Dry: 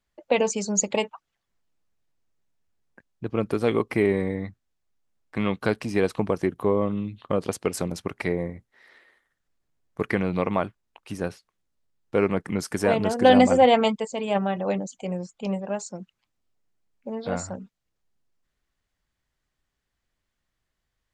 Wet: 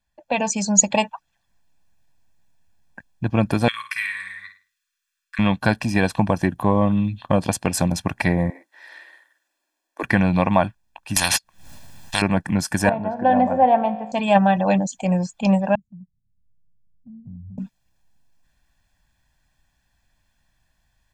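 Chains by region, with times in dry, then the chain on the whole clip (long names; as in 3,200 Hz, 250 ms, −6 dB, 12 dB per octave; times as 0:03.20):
0:03.68–0:05.39: elliptic high-pass filter 1,200 Hz + flutter between parallel walls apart 9.2 metres, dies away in 0.35 s
0:08.50–0:10.03: elliptic high-pass filter 300 Hz, stop band 50 dB + parametric band 760 Hz −5 dB 0.37 octaves + double-tracking delay 48 ms −4.5 dB
0:11.16–0:12.22: noise gate −48 dBFS, range −43 dB + upward compression, threshold −31 dBFS + every bin compressed towards the loudest bin 10 to 1
0:12.89–0:14.12: low-pass filter 1,200 Hz + low-shelf EQ 130 Hz −11 dB + tuned comb filter 54 Hz, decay 1.5 s
0:15.75–0:17.58: inverse Chebyshev low-pass filter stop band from 820 Hz, stop band 70 dB + downward compressor 2.5 to 1, threshold −54 dBFS
whole clip: comb filter 1.2 ms, depth 76%; automatic gain control gain up to 10 dB; level −1 dB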